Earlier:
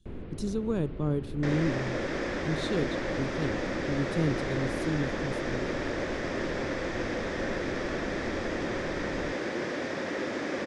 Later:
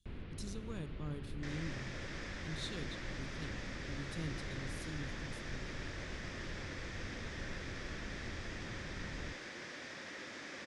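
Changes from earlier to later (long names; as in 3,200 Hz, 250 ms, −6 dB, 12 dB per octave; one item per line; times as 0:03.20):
speech: send +11.0 dB
first sound +9.5 dB
master: add guitar amp tone stack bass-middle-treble 5-5-5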